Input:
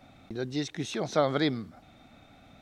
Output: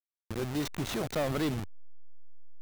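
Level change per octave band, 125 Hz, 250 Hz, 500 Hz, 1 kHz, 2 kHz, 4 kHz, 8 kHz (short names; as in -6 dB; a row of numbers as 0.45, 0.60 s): +0.5, -2.0, -4.5, -5.0, -2.5, -3.5, +0.5 dB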